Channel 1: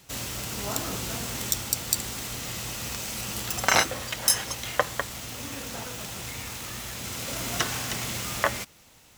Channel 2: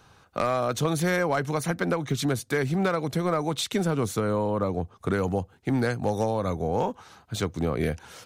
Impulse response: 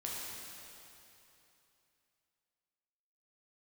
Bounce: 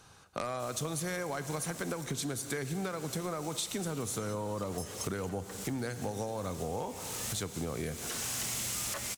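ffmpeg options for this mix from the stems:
-filter_complex "[0:a]alimiter=limit=-13dB:level=0:latency=1:release=459,asoftclip=type=hard:threshold=-29dB,adelay=500,volume=-1dB[a];[1:a]volume=-4.5dB,asplit=3[b][c][d];[c]volume=-11.5dB[e];[d]apad=whole_len=426751[f];[a][f]sidechaincompress=threshold=-41dB:ratio=6:attack=27:release=490[g];[2:a]atrim=start_sample=2205[h];[e][h]afir=irnorm=-1:irlink=0[i];[g][b][i]amix=inputs=3:normalize=0,equalizer=f=8.8k:t=o:w=1.5:g=10.5,acompressor=threshold=-33dB:ratio=5"

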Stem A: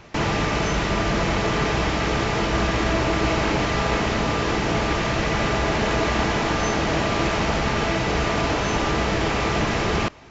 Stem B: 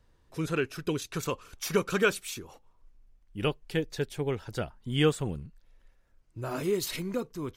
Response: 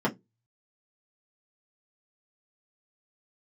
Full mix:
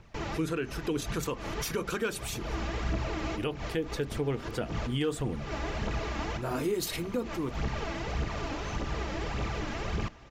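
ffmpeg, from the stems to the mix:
-filter_complex "[0:a]lowshelf=f=170:g=6.5,aphaser=in_gain=1:out_gain=1:delay=3.8:decay=0.54:speed=1.7:type=triangular,volume=-15.5dB,asplit=2[a][b];[b]volume=-20.5dB[c];[1:a]asoftclip=type=hard:threshold=-15.5dB,volume=-0.5dB,asplit=3[d][e][f];[e]volume=-20.5dB[g];[f]apad=whole_len=454456[h];[a][h]sidechaincompress=threshold=-46dB:ratio=10:attack=26:release=107[i];[2:a]atrim=start_sample=2205[j];[g][j]afir=irnorm=-1:irlink=0[k];[c]aecho=0:1:422|844|1266|1688|2110|2532|2954|3376:1|0.56|0.314|0.176|0.0983|0.0551|0.0308|0.0173[l];[i][d][k][l]amix=inputs=4:normalize=0,alimiter=limit=-21.5dB:level=0:latency=1:release=93"

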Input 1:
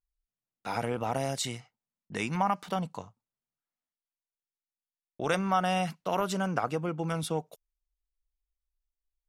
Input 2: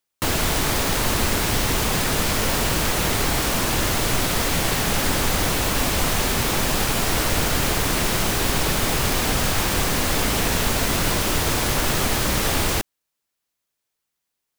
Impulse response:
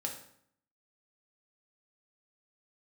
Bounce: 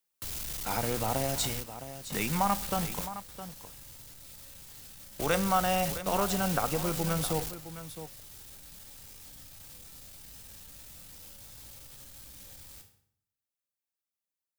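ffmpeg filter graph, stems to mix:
-filter_complex "[0:a]lowshelf=f=83:g=5,acrusher=bits=6:mix=0:aa=0.000001,volume=-2.5dB,asplit=4[a][b][c][d];[b]volume=-10.5dB[e];[c]volume=-10.5dB[f];[1:a]acrossover=split=130|3000[g][h][i];[h]acompressor=threshold=-41dB:ratio=2.5[j];[g][j][i]amix=inputs=3:normalize=0,asoftclip=type=tanh:threshold=-33.5dB,volume=-7dB,asplit=2[k][l];[l]volume=-10.5dB[m];[d]apad=whole_len=643193[n];[k][n]sidechaingate=range=-33dB:threshold=-44dB:ratio=16:detection=peak[o];[2:a]atrim=start_sample=2205[p];[e][m]amix=inputs=2:normalize=0[q];[q][p]afir=irnorm=-1:irlink=0[r];[f]aecho=0:1:663:1[s];[a][o][r][s]amix=inputs=4:normalize=0,highshelf=f=9.5k:g=7"

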